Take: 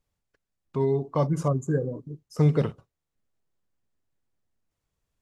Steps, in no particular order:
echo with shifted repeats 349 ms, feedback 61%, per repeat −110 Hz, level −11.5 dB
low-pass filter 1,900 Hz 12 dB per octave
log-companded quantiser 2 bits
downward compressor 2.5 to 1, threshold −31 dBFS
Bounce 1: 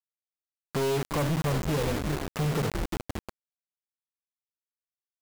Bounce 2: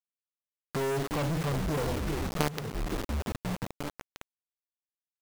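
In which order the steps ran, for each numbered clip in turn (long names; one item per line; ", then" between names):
downward compressor, then echo with shifted repeats, then low-pass filter, then log-companded quantiser
echo with shifted repeats, then low-pass filter, then log-companded quantiser, then downward compressor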